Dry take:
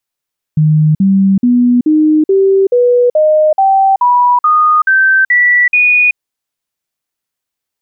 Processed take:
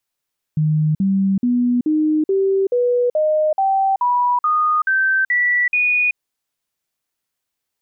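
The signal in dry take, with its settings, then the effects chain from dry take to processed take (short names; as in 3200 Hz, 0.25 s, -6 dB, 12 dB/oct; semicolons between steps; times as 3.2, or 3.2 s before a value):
stepped sine 154 Hz up, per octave 3, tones 13, 0.38 s, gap 0.05 s -5.5 dBFS
limiter -13.5 dBFS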